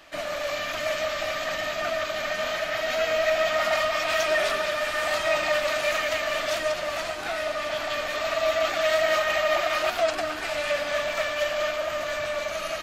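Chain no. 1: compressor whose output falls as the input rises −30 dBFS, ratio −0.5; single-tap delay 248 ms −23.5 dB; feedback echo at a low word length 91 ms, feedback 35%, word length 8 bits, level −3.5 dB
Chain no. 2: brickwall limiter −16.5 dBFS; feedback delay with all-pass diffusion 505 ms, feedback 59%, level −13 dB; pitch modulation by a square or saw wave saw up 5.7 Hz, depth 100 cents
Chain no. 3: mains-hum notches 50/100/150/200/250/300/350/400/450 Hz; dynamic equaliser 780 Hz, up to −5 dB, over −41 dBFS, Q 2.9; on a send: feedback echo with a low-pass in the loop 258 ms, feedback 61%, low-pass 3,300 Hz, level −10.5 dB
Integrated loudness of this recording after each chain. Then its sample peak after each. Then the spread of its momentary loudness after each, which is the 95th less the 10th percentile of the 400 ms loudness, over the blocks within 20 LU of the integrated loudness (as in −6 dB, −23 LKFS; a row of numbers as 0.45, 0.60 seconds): −28.0, −26.0, −26.0 LKFS; −12.5, −14.0, −12.5 dBFS; 9, 4, 6 LU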